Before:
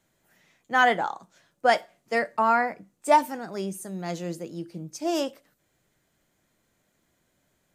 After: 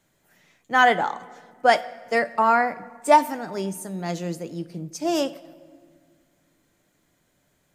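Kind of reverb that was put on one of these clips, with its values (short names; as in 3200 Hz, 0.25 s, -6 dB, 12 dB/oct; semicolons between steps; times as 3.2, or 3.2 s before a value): shoebox room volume 2900 m³, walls mixed, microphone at 0.35 m; gain +3 dB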